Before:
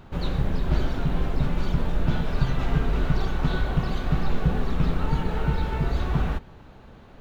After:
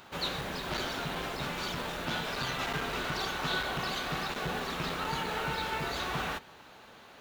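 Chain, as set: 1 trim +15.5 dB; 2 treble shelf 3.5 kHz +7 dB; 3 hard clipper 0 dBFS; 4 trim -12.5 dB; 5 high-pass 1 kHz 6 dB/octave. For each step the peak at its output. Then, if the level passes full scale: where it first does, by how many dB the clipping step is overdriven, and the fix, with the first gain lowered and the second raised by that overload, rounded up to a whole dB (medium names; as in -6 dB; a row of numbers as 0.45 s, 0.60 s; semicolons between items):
+8.0 dBFS, +8.0 dBFS, 0.0 dBFS, -12.5 dBFS, -19.0 dBFS; step 1, 8.0 dB; step 1 +7.5 dB, step 4 -4.5 dB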